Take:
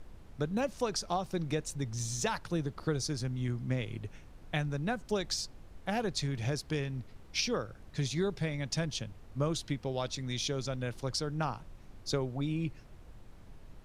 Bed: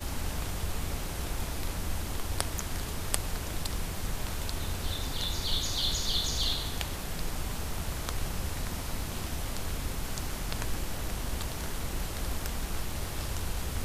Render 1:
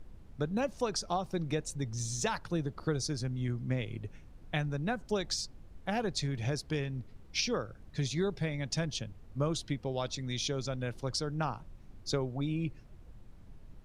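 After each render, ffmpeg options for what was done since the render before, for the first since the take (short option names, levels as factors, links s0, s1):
-af "afftdn=nr=6:nf=-53"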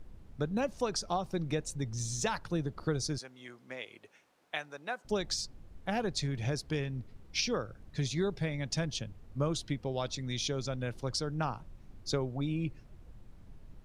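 -filter_complex "[0:a]asettb=1/sr,asplit=3[s0][s1][s2];[s0]atrim=end=3.184[s3];[s1]atrim=start=3.18:end=5.05,asetpts=PTS-STARTPTS,afade=t=in:d=0.004:c=qsin,afade=t=out:st=1.866:d=0.004:c=qsin,highpass=600[s4];[s2]atrim=start=5.046[s5];[s3][s4]acrossfade=d=0.004:c1=hsin:c2=qsin[s6];[s6][s5]acrossfade=d=0.004:c1=qsin:c2=hsin"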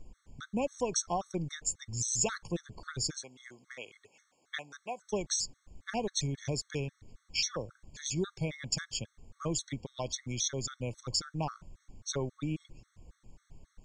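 -af "lowpass=f=7200:t=q:w=5.1,afftfilt=real='re*gt(sin(2*PI*3.7*pts/sr)*(1-2*mod(floor(b*sr/1024/1100),2)),0)':imag='im*gt(sin(2*PI*3.7*pts/sr)*(1-2*mod(floor(b*sr/1024/1100),2)),0)':win_size=1024:overlap=0.75"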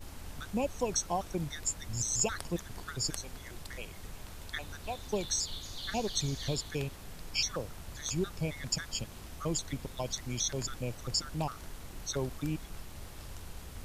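-filter_complex "[1:a]volume=0.251[s0];[0:a][s0]amix=inputs=2:normalize=0"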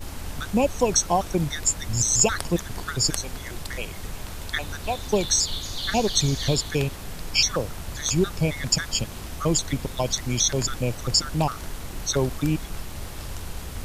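-af "volume=3.55"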